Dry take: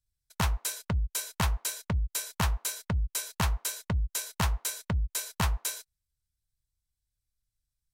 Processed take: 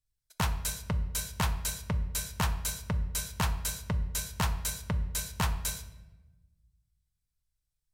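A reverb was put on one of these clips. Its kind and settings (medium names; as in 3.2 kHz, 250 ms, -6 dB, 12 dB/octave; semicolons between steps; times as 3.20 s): simulated room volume 620 m³, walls mixed, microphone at 0.45 m; trim -1.5 dB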